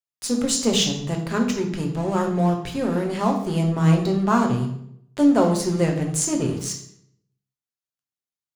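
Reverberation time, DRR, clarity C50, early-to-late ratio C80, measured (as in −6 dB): 0.70 s, 2.0 dB, 7.5 dB, 10.5 dB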